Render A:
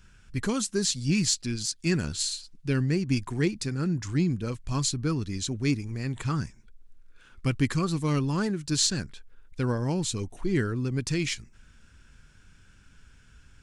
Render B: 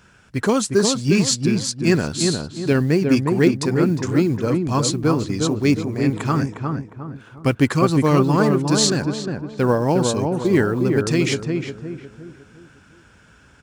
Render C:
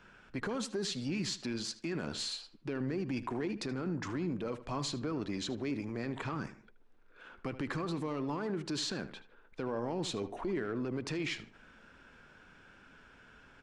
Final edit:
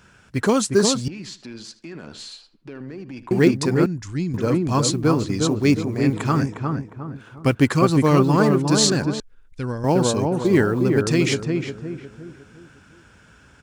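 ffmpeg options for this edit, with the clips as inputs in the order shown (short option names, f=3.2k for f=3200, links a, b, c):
-filter_complex "[0:a]asplit=2[a][b];[1:a]asplit=4[c][d][e][f];[c]atrim=end=1.082[g];[2:a]atrim=start=1.078:end=3.312[h];[d]atrim=start=3.308:end=3.862[i];[a]atrim=start=3.858:end=4.342[j];[e]atrim=start=4.338:end=9.202[k];[b]atrim=start=9.198:end=9.842[l];[f]atrim=start=9.838[m];[g][h]acrossfade=d=0.004:c1=hsin:c2=hsin[n];[n][i]acrossfade=d=0.004:c1=hsin:c2=hsin[o];[o][j]acrossfade=d=0.004:c1=hsin:c2=hsin[p];[p][k]acrossfade=d=0.004:c1=hsin:c2=hsin[q];[q][l]acrossfade=d=0.004:c1=hsin:c2=hsin[r];[r][m]acrossfade=d=0.004:c1=hsin:c2=hsin"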